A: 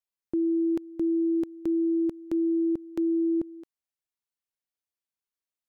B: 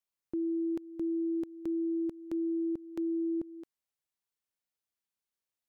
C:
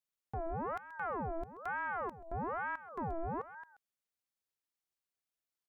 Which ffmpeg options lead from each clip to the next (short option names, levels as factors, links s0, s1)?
-af "alimiter=level_in=1.68:limit=0.0631:level=0:latency=1:release=280,volume=0.596"
-af "aeval=exprs='(tanh(44.7*val(0)+0.45)-tanh(0.45))/44.7':c=same,aecho=1:1:131:0.188,aeval=exprs='val(0)*sin(2*PI*810*n/s+810*0.6/1.1*sin(2*PI*1.1*n/s))':c=same,volume=1.19"